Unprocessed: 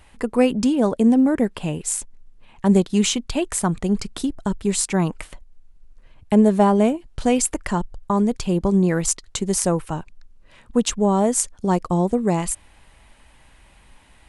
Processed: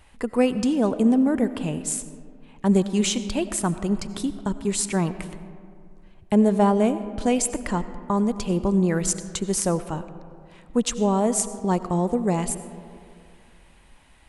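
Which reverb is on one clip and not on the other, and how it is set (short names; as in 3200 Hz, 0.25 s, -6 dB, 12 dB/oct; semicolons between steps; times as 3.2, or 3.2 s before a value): digital reverb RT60 2.4 s, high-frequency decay 0.4×, pre-delay 50 ms, DRR 12.5 dB; gain -3 dB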